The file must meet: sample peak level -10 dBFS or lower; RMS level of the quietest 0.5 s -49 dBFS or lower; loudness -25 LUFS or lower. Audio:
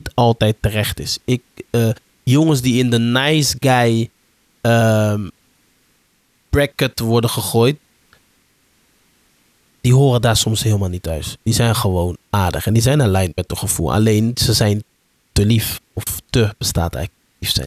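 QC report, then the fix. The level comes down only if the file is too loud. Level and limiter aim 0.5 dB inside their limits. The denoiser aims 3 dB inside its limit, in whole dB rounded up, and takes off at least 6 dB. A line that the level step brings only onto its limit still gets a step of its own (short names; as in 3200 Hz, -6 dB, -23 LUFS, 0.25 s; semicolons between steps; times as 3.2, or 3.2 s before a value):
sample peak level -4.0 dBFS: fail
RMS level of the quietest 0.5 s -61 dBFS: OK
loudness -17.0 LUFS: fail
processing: gain -8.5 dB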